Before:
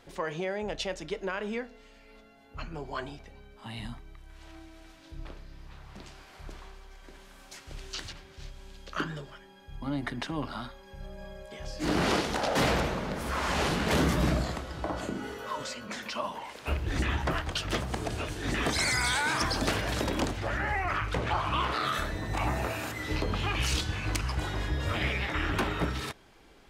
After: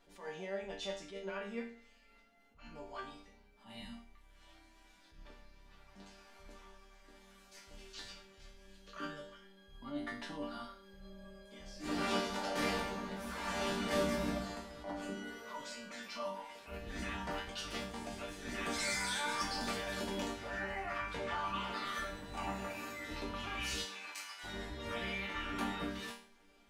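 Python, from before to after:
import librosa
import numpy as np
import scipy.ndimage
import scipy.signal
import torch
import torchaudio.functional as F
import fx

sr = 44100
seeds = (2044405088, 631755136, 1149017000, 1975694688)

y = fx.highpass(x, sr, hz=fx.line((23.84, 450.0), (24.43, 1500.0)), slope=12, at=(23.84, 24.43), fade=0.02)
y = fx.resonator_bank(y, sr, root=55, chord='minor', decay_s=0.45)
y = fx.attack_slew(y, sr, db_per_s=140.0)
y = y * librosa.db_to_amplitude(10.0)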